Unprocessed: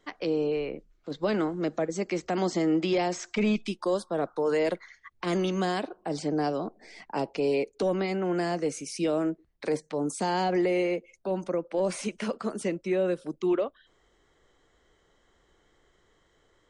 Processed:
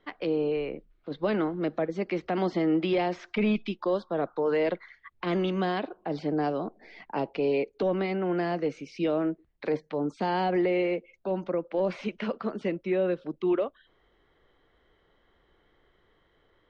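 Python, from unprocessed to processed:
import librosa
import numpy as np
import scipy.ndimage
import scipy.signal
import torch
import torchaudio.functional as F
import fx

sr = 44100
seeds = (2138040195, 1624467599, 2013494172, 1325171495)

y = scipy.signal.sosfilt(scipy.signal.butter(4, 3800.0, 'lowpass', fs=sr, output='sos'), x)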